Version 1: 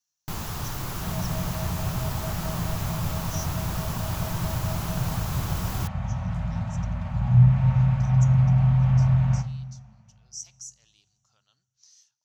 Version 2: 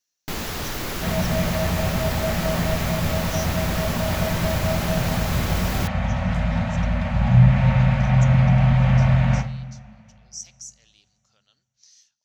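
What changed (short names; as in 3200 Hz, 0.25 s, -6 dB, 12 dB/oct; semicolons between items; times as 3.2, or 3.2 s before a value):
first sound +3.0 dB; second sound +8.5 dB; master: add graphic EQ 125/250/500/1000/2000/4000 Hz -8/+5/+7/-4/+7/+4 dB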